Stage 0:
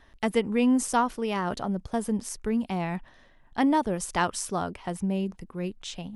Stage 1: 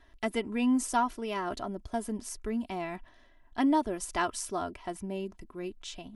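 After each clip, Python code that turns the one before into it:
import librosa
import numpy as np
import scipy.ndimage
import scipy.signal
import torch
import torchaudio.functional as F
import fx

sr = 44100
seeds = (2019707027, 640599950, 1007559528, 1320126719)

y = x + 0.64 * np.pad(x, (int(3.0 * sr / 1000.0), 0))[:len(x)]
y = y * 10.0 ** (-5.5 / 20.0)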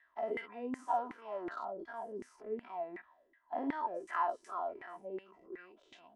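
y = fx.spec_dilate(x, sr, span_ms=120)
y = fx.filter_lfo_bandpass(y, sr, shape='saw_down', hz=2.7, low_hz=320.0, high_hz=2000.0, q=6.9)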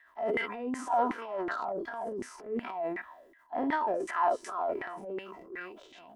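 y = fx.transient(x, sr, attack_db=-7, sustain_db=8)
y = y * 10.0 ** (7.0 / 20.0)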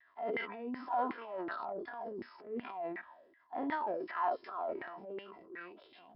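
y = scipy.signal.sosfilt(scipy.signal.butter(2, 86.0, 'highpass', fs=sr, output='sos'), x)
y = fx.vibrato(y, sr, rate_hz=1.2, depth_cents=52.0)
y = fx.brickwall_lowpass(y, sr, high_hz=5400.0)
y = y * 10.0 ** (-6.0 / 20.0)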